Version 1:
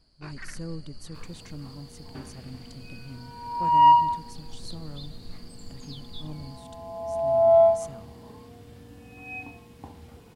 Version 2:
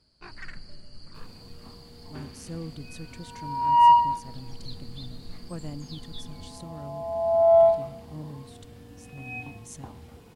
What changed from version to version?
speech: entry +1.90 s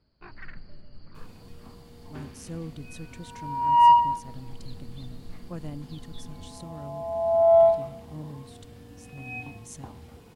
first sound: add air absorption 300 m

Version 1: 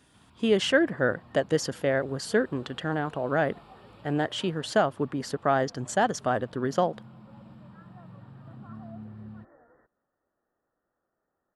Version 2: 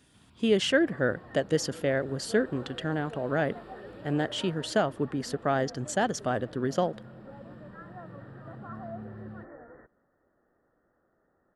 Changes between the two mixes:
second sound +12.0 dB; master: add bell 980 Hz -5.5 dB 1.3 oct

